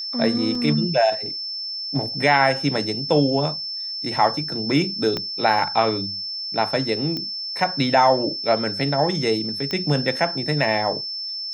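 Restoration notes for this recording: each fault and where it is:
whistle 5,300 Hz −27 dBFS
0:00.55: drop-out 3.4 ms
0:05.17: click −12 dBFS
0:07.17: click −15 dBFS
0:09.71: click −13 dBFS

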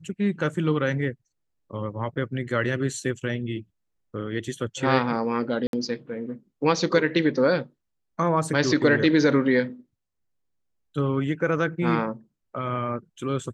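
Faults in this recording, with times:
0:05.67–0:05.73: drop-out 62 ms

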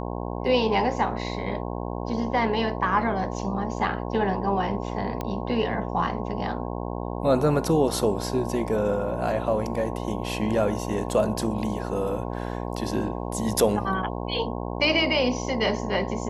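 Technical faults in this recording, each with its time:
mains buzz 60 Hz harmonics 18 −31 dBFS
0:05.21: click −16 dBFS

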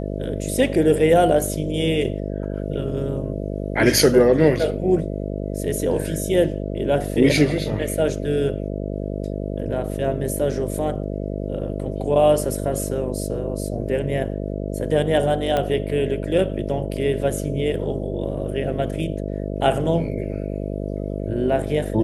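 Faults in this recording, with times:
mains buzz 50 Hz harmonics 13 −27 dBFS
0:15.57: click −10 dBFS

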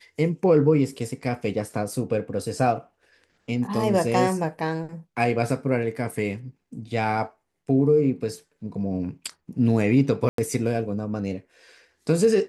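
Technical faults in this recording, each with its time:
0:10.29–0:10.38: drop-out 93 ms

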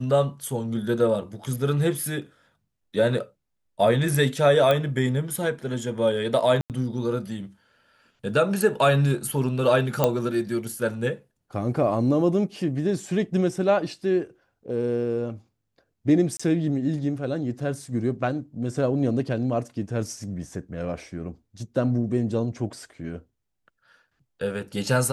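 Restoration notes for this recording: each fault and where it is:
0:04.71: click −11 dBFS
0:06.61–0:06.70: drop-out 88 ms
0:10.04: click −6 dBFS
0:16.37–0:16.39: drop-out 25 ms

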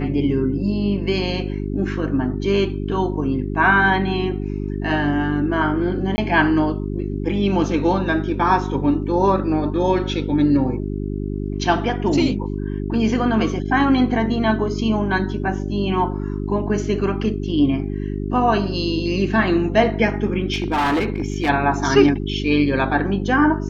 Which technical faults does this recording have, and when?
mains hum 50 Hz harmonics 8 −25 dBFS
0:06.16–0:06.18: drop-out 20 ms
0:20.53–0:21.50: clipping −16 dBFS

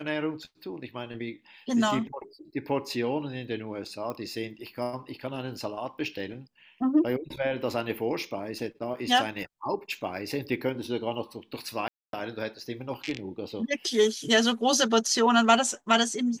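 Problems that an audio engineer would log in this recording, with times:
0:04.10: click −22 dBFS
0:11.88–0:12.13: drop-out 252 ms

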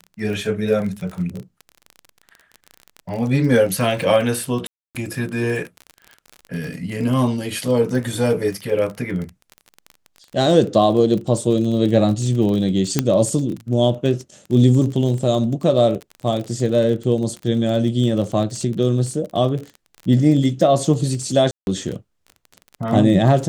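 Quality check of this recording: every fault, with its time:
surface crackle 30 per second −26 dBFS
0:04.67–0:04.95: drop-out 278 ms
0:12.99: click −2 dBFS
0:21.51–0:21.67: drop-out 161 ms

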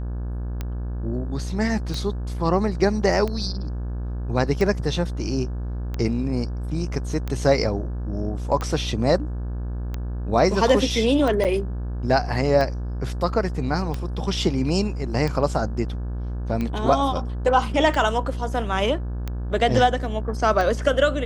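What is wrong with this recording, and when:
mains buzz 60 Hz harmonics 29 −28 dBFS
scratch tick 45 rpm −15 dBFS
0:11.44–0:11.45: drop-out 7.5 ms

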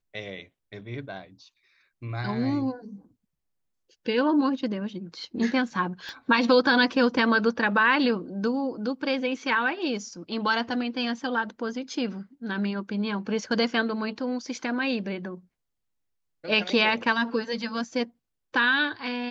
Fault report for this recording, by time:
0:06.09: click −26 dBFS

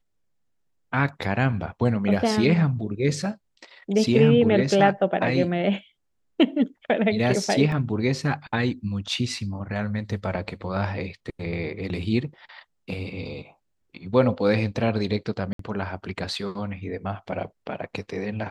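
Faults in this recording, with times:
0:07.72: drop-out 2.1 ms
0:15.53–0:15.59: drop-out 63 ms

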